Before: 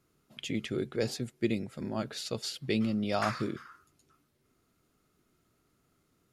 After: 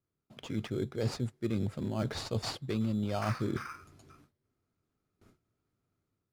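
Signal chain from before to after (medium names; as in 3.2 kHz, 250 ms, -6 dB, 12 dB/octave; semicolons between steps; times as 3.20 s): in parallel at -3 dB: sample-rate reducer 3.7 kHz, jitter 0%; on the sum: gate with hold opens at -56 dBFS; reverse; compression 4:1, threshold -39 dBFS, peak gain reduction 17 dB; reverse; treble shelf 11 kHz -10.5 dB; level rider gain up to 6 dB; peaking EQ 100 Hz +8.5 dB 0.57 oct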